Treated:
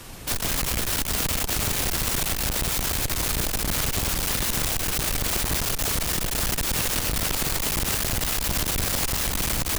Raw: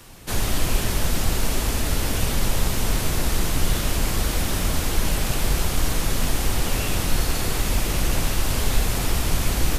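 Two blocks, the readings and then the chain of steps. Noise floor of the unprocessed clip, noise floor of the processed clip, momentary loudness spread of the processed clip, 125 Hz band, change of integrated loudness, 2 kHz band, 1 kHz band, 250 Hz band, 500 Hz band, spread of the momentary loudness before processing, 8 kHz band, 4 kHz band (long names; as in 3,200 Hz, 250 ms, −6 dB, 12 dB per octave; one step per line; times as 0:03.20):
−26 dBFS, −29 dBFS, 1 LU, −5.5 dB, +0.5 dB, 0.0 dB, −1.5 dB, −4.0 dB, −3.5 dB, 1 LU, +2.5 dB, +1.0 dB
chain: tube saturation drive 23 dB, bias 0.7
wrap-around overflow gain 29 dB
level +8.5 dB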